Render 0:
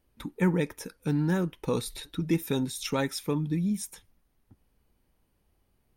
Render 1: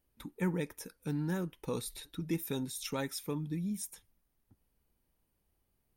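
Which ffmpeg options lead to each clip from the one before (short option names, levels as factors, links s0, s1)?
-af "highshelf=f=8800:g=9,volume=0.398"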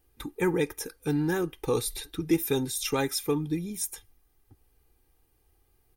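-af "aecho=1:1:2.5:0.69,volume=2.51"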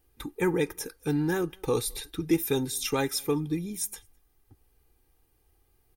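-filter_complex "[0:a]asplit=2[s0][s1];[s1]adelay=209.9,volume=0.0316,highshelf=f=4000:g=-4.72[s2];[s0][s2]amix=inputs=2:normalize=0"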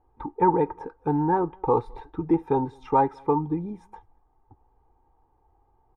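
-af "lowpass=f=920:t=q:w=7.6,volume=1.19"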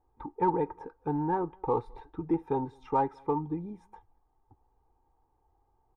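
-af "aeval=exprs='0.376*(cos(1*acos(clip(val(0)/0.376,-1,1)))-cos(1*PI/2))+0.00211*(cos(8*acos(clip(val(0)/0.376,-1,1)))-cos(8*PI/2))':c=same,volume=0.473"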